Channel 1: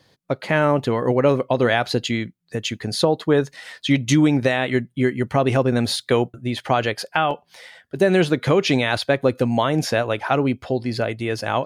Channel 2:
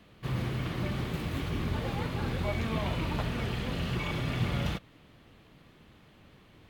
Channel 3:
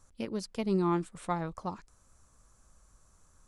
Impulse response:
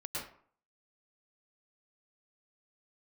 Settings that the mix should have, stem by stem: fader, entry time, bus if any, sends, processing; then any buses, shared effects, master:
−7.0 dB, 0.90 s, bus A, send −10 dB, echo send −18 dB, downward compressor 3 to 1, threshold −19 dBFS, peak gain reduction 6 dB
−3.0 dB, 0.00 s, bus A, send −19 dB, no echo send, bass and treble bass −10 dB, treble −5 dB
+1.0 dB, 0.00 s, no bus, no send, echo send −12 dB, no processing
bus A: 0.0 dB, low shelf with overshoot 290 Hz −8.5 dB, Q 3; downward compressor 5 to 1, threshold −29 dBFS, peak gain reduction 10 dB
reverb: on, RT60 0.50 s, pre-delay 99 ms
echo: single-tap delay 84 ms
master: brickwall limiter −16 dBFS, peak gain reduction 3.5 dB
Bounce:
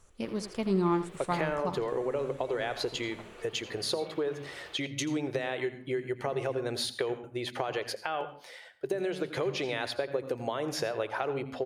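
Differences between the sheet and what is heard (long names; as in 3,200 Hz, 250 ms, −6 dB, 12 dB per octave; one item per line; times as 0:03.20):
stem 2 −3.0 dB → −13.0 dB
reverb return −7.5 dB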